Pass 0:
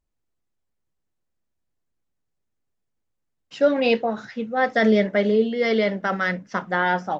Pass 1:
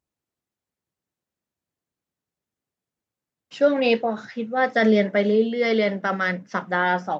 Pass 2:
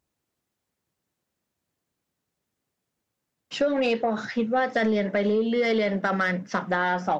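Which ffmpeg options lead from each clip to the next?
-af "highpass=100"
-filter_complex "[0:a]asplit=2[s0][s1];[s1]alimiter=limit=0.126:level=0:latency=1:release=87,volume=1.06[s2];[s0][s2]amix=inputs=2:normalize=0,acompressor=threshold=0.112:ratio=6,asoftclip=type=tanh:threshold=0.211"

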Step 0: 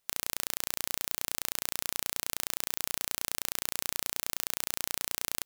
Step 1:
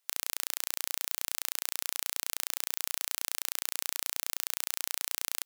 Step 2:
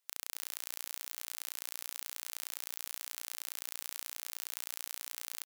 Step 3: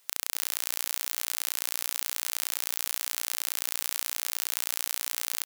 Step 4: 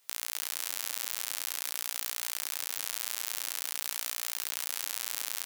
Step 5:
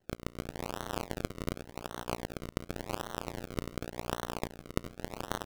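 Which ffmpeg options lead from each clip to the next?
-af "highpass=f=980:p=1"
-filter_complex "[0:a]alimiter=limit=0.422:level=0:latency=1,asplit=2[s0][s1];[s1]aecho=0:1:257:0.299[s2];[s0][s2]amix=inputs=2:normalize=0,volume=0.596"
-af "alimiter=level_in=9.44:limit=0.891:release=50:level=0:latency=1,volume=0.891"
-af "flanger=delay=18:depth=6.6:speed=0.48"
-af "asuperpass=centerf=3100:order=8:qfactor=1.5,acrusher=samples=36:mix=1:aa=0.000001:lfo=1:lforange=36:lforate=0.89,aeval=exprs='0.0531*(cos(1*acos(clip(val(0)/0.0531,-1,1)))-cos(1*PI/2))+0.0106*(cos(3*acos(clip(val(0)/0.0531,-1,1)))-cos(3*PI/2))':c=same,volume=3.35"

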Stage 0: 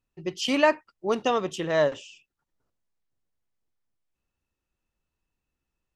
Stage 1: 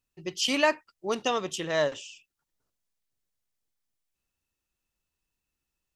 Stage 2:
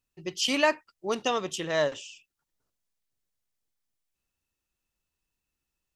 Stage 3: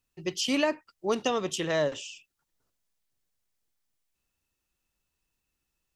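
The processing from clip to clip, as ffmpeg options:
-af "highshelf=f=2600:g=10.5,volume=0.596"
-af anull
-filter_complex "[0:a]acrossover=split=500[s0][s1];[s1]acompressor=threshold=0.0282:ratio=6[s2];[s0][s2]amix=inputs=2:normalize=0,volume=1.41"

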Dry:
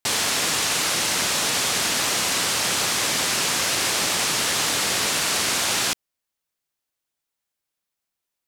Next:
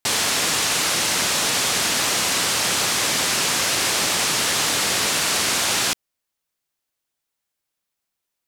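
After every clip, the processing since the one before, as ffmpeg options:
-af "acontrast=83,volume=0.562"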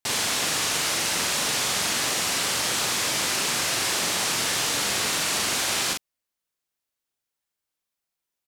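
-filter_complex "[0:a]asplit=2[s0][s1];[s1]adelay=42,volume=0.708[s2];[s0][s2]amix=inputs=2:normalize=0,volume=0.501"

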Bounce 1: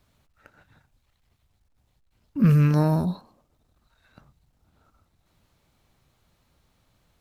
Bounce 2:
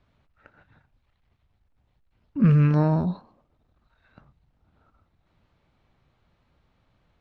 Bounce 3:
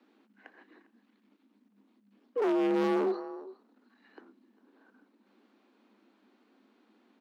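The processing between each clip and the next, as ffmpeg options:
-af "lowpass=3000"
-af "aecho=1:1:403:0.0944,asoftclip=type=hard:threshold=0.0501,afreqshift=200"

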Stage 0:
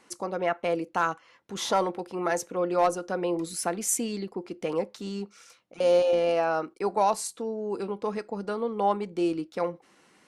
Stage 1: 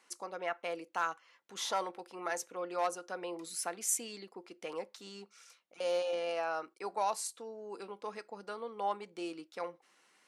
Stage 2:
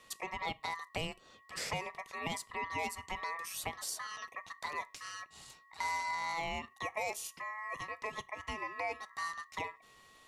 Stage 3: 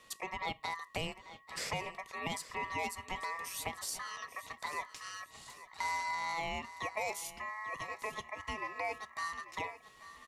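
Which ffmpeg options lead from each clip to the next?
-af "highpass=f=1000:p=1,volume=0.562"
-filter_complex "[0:a]aeval=exprs='val(0)+0.000562*sin(2*PI*400*n/s)':c=same,aeval=exprs='val(0)*sin(2*PI*1500*n/s)':c=same,acrossover=split=1400|4800[s0][s1][s2];[s0]acompressor=threshold=0.00631:ratio=4[s3];[s1]acompressor=threshold=0.00224:ratio=4[s4];[s2]acompressor=threshold=0.00282:ratio=4[s5];[s3][s4][s5]amix=inputs=3:normalize=0,volume=2.37"
-af "aecho=1:1:841|1682|2523:0.178|0.064|0.023"

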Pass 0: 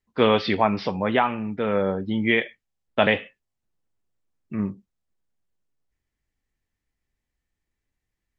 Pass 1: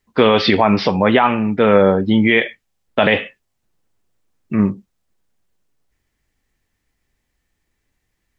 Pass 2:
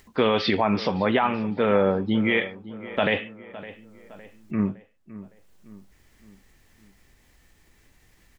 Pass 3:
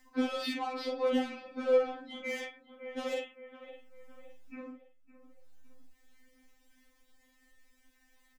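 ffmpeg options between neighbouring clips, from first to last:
-af "lowshelf=f=150:g=-3,alimiter=level_in=4.47:limit=0.891:release=50:level=0:latency=1,volume=0.891"
-filter_complex "[0:a]acompressor=mode=upward:threshold=0.0282:ratio=2.5,asplit=2[s0][s1];[s1]adelay=561,lowpass=f=2600:p=1,volume=0.158,asplit=2[s2][s3];[s3]adelay=561,lowpass=f=2600:p=1,volume=0.49,asplit=2[s4][s5];[s5]adelay=561,lowpass=f=2600:p=1,volume=0.49,asplit=2[s6][s7];[s7]adelay=561,lowpass=f=2600:p=1,volume=0.49[s8];[s0][s2][s4][s6][s8]amix=inputs=5:normalize=0,volume=0.376"
-filter_complex "[0:a]asplit=2[s0][s1];[s1]adelay=47,volume=0.562[s2];[s0][s2]amix=inputs=2:normalize=0,acrossover=split=510[s3][s4];[s4]asoftclip=type=tanh:threshold=0.0562[s5];[s3][s5]amix=inputs=2:normalize=0,afftfilt=real='re*3.46*eq(mod(b,12),0)':imag='im*3.46*eq(mod(b,12),0)':win_size=2048:overlap=0.75,volume=0.447"

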